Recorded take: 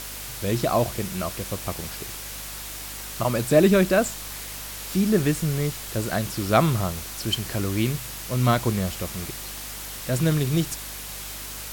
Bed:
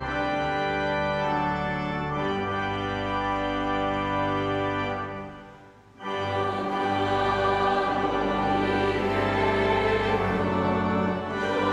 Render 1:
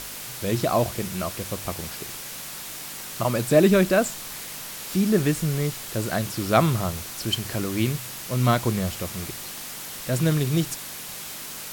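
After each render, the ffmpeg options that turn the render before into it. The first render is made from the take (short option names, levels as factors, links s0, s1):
-af "bandreject=f=50:t=h:w=4,bandreject=f=100:t=h:w=4"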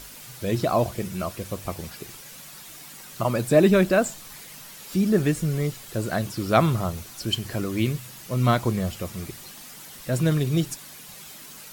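-af "afftdn=nr=9:nf=-37"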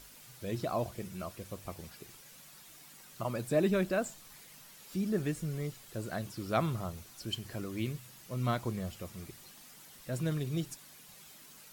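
-af "volume=0.266"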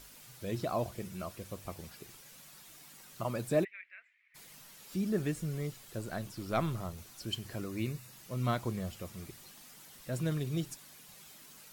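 -filter_complex "[0:a]asplit=3[s0][s1][s2];[s0]afade=t=out:st=3.63:d=0.02[s3];[s1]asuperpass=centerf=2100:order=4:qfactor=4,afade=t=in:st=3.63:d=0.02,afade=t=out:st=4.34:d=0.02[s4];[s2]afade=t=in:st=4.34:d=0.02[s5];[s3][s4][s5]amix=inputs=3:normalize=0,asettb=1/sr,asplit=3[s6][s7][s8];[s6]atrim=end=5.994[s9];[s7]atrim=start=5.99:end=6.99,asetpts=PTS-STARTPTS,afade=t=in:d=0.004:c=qsin,afade=t=out:st=0.996:d=0.004:c=qsin,aeval=exprs='if(lt(val(0),0),0.708*val(0),val(0))':c=same[s10];[s8]atrim=start=6.986[s11];[s9][s10]acrossfade=d=0.004:c1=hsin:c2=qsin[s12];[s12][s11]acrossfade=d=0.004:c1=qsin:c2=hsin,asettb=1/sr,asplit=3[s13][s14][s15];[s13]atrim=end=7.664[s16];[s14]atrim=start=7.66:end=8.13,asetpts=PTS-STARTPTS,afade=t=in:d=0.004:c=qsin,afade=t=out:st=0.466:d=0.004:c=qsin,asuperstop=centerf=3200:order=4:qfactor=6.7[s17];[s15]atrim=start=8.126[s18];[s16][s17]acrossfade=d=0.004:c1=hsin:c2=qsin[s19];[s19][s18]acrossfade=d=0.004:c1=qsin:c2=hsin"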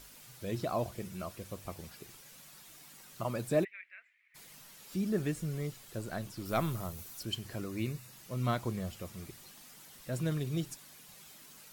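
-filter_complex "[0:a]asettb=1/sr,asplit=3[s0][s1][s2];[s0]atrim=end=6.454[s3];[s1]atrim=start=6.45:end=7.23,asetpts=PTS-STARTPTS,afade=t=in:d=0.004:c=qsin,afade=t=out:st=0.776:d=0.004:c=qsin,highshelf=f=10000:g=11.5[s4];[s2]atrim=start=7.226[s5];[s3][s4]acrossfade=d=0.004:c1=hsin:c2=qsin[s6];[s6][s5]acrossfade=d=0.004:c1=qsin:c2=hsin"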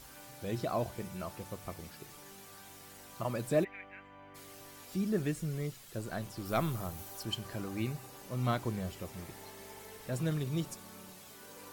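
-filter_complex "[1:a]volume=0.0376[s0];[0:a][s0]amix=inputs=2:normalize=0"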